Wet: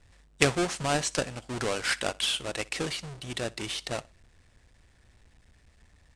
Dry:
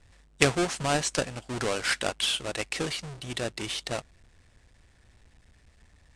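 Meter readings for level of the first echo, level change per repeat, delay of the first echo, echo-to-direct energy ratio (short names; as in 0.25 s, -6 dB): -23.0 dB, -10.5 dB, 62 ms, -22.5 dB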